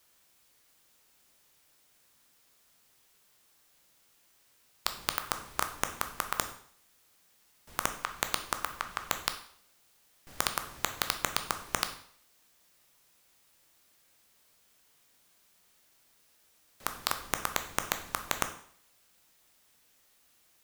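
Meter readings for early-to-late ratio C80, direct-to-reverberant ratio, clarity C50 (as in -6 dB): 14.0 dB, 7.0 dB, 11.0 dB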